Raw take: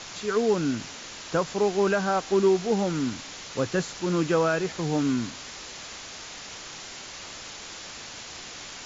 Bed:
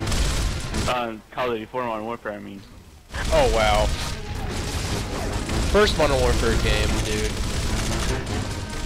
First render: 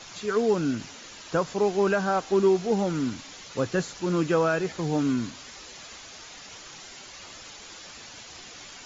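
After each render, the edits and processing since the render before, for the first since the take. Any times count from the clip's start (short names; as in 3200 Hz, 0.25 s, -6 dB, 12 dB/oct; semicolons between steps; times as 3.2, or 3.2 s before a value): denoiser 7 dB, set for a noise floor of -41 dBFS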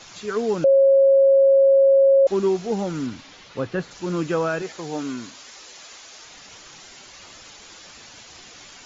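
0.64–2.27 bleep 545 Hz -11 dBFS; 3.06–3.9 LPF 5600 Hz -> 3200 Hz; 4.62–6.25 tone controls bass -11 dB, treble +2 dB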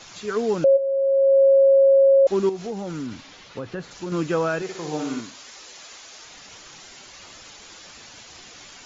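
0.76–1.46 band-pass 2000 Hz -> 550 Hz, Q 1; 2.49–4.12 compressor 4:1, threshold -27 dBFS; 4.63–5.21 flutter echo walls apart 10.1 m, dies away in 0.66 s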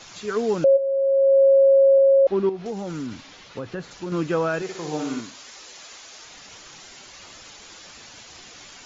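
1.98–2.66 air absorption 240 m; 3.95–4.54 air absorption 55 m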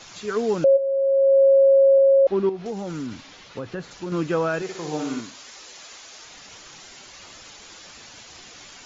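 nothing audible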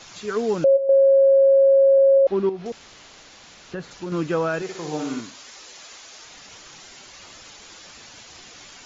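0.89–2.18 fast leveller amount 100%; 2.72–3.72 room tone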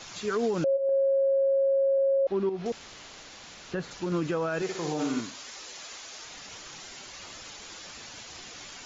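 compressor, threshold -20 dBFS, peak gain reduction 7 dB; limiter -20.5 dBFS, peak gain reduction 7 dB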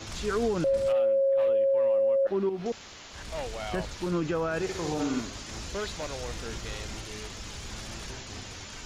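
add bed -17 dB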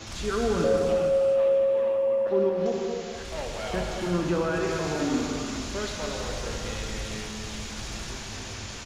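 feedback echo 0.235 s, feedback 58%, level -13.5 dB; non-linear reverb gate 0.5 s flat, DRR -0.5 dB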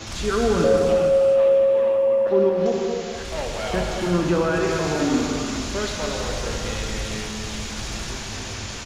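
gain +5.5 dB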